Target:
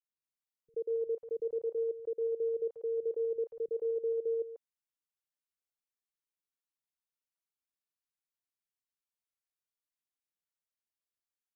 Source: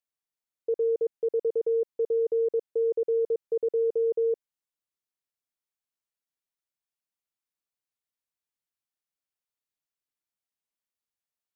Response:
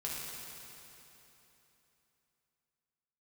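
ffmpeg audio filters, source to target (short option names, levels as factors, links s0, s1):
-filter_complex "[0:a]acrossover=split=160|640[s0][s1][s2];[s1]adelay=80[s3];[s2]adelay=220[s4];[s0][s3][s4]amix=inputs=3:normalize=0,volume=0.473"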